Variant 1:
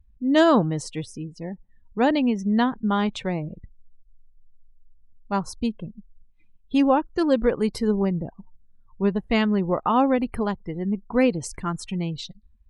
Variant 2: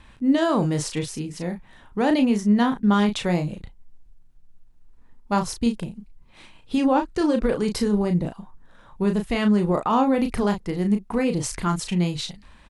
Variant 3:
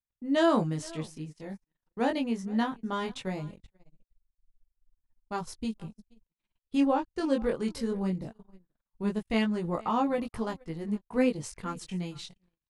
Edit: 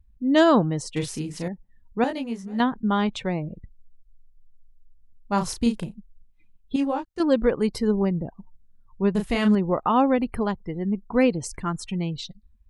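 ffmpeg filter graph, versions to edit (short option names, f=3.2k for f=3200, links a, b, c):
-filter_complex "[1:a]asplit=3[a][b][c];[2:a]asplit=2[d][e];[0:a]asplit=6[f][g][h][i][j][k];[f]atrim=end=0.962[l];[a]atrim=start=0.958:end=1.482[m];[g]atrim=start=1.478:end=2.042[n];[d]atrim=start=2.038:end=2.602[o];[h]atrim=start=2.598:end=5.44[p];[b]atrim=start=5.28:end=5.97[q];[i]atrim=start=5.81:end=6.762[r];[e]atrim=start=6.758:end=7.202[s];[j]atrim=start=7.198:end=9.152[t];[c]atrim=start=9.148:end=9.552[u];[k]atrim=start=9.548[v];[l][m]acrossfade=d=0.004:c1=hsin:c2=hsin[w];[w][n]acrossfade=d=0.004:c1=hsin:c2=hsin[x];[x][o]acrossfade=d=0.004:c1=hsin:c2=hsin[y];[y][p]acrossfade=d=0.004:c1=hsin:c2=hsin[z];[z][q]acrossfade=d=0.16:c1=tri:c2=tri[aa];[aa][r]acrossfade=d=0.16:c1=tri:c2=tri[ab];[ab][s]acrossfade=d=0.004:c1=hsin:c2=hsin[ac];[ac][t]acrossfade=d=0.004:c1=hsin:c2=hsin[ad];[ad][u]acrossfade=d=0.004:c1=hsin:c2=hsin[ae];[ae][v]acrossfade=d=0.004:c1=hsin:c2=hsin"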